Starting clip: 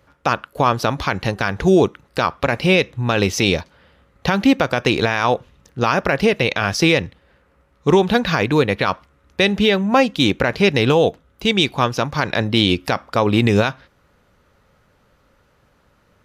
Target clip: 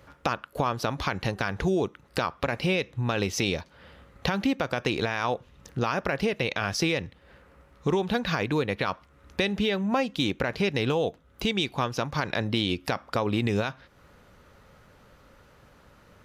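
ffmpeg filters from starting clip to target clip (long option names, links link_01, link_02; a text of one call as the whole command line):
ffmpeg -i in.wav -af "acompressor=threshold=-33dB:ratio=2.5,volume=3dB" out.wav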